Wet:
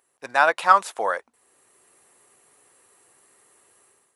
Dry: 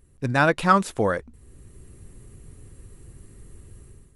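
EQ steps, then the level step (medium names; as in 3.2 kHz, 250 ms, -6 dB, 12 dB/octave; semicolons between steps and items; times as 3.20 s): resonant high-pass 780 Hz, resonance Q 1.7; 0.0 dB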